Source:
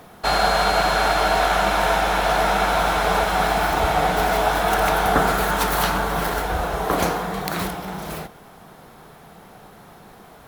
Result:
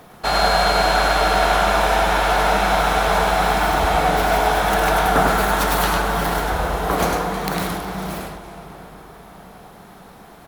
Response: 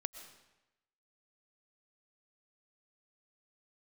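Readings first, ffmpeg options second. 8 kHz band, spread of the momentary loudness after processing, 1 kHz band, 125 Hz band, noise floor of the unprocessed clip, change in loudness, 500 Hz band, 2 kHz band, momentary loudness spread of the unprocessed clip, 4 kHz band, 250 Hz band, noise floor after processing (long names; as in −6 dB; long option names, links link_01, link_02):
+2.0 dB, 9 LU, +2.0 dB, +3.0 dB, −46 dBFS, +2.0 dB, +2.0 dB, +2.0 dB, 8 LU, +2.0 dB, +2.0 dB, −43 dBFS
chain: -filter_complex "[0:a]asplit=2[link_01][link_02];[link_02]adelay=611,lowpass=frequency=2400:poles=1,volume=-15.5dB,asplit=2[link_03][link_04];[link_04]adelay=611,lowpass=frequency=2400:poles=1,volume=0.54,asplit=2[link_05][link_06];[link_06]adelay=611,lowpass=frequency=2400:poles=1,volume=0.54,asplit=2[link_07][link_08];[link_08]adelay=611,lowpass=frequency=2400:poles=1,volume=0.54,asplit=2[link_09][link_10];[link_10]adelay=611,lowpass=frequency=2400:poles=1,volume=0.54[link_11];[link_01][link_03][link_05][link_07][link_09][link_11]amix=inputs=6:normalize=0,asplit=2[link_12][link_13];[1:a]atrim=start_sample=2205,asetrate=23373,aresample=44100,adelay=102[link_14];[link_13][link_14]afir=irnorm=-1:irlink=0,volume=-5dB[link_15];[link_12][link_15]amix=inputs=2:normalize=0"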